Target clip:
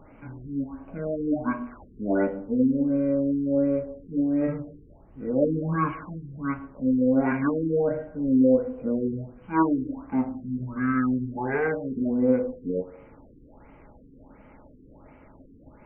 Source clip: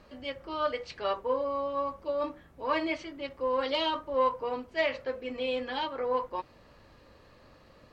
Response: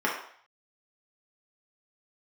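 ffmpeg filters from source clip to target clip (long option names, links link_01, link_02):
-filter_complex "[0:a]asetrate=22050,aresample=44100,asplit=2[link_01][link_02];[1:a]atrim=start_sample=2205,asetrate=33075,aresample=44100[link_03];[link_02][link_03]afir=irnorm=-1:irlink=0,volume=-25.5dB[link_04];[link_01][link_04]amix=inputs=2:normalize=0,afftfilt=real='re*lt(b*sr/1024,460*pow(3200/460,0.5+0.5*sin(2*PI*1.4*pts/sr)))':imag='im*lt(b*sr/1024,460*pow(3200/460,0.5+0.5*sin(2*PI*1.4*pts/sr)))':win_size=1024:overlap=0.75,volume=6dB"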